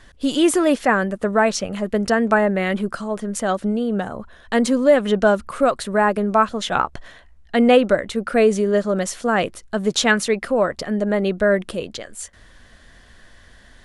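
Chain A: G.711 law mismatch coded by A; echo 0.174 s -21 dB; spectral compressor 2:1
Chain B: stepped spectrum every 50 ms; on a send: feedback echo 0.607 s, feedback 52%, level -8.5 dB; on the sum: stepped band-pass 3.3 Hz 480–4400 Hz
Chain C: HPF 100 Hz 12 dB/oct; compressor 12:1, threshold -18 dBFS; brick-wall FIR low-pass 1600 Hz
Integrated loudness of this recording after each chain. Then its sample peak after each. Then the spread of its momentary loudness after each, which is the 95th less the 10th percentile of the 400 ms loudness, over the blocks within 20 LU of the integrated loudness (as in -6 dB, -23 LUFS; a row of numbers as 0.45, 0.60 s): -24.0, -31.0, -25.0 LUFS; -2.5, -11.0, -7.0 dBFS; 7, 16, 5 LU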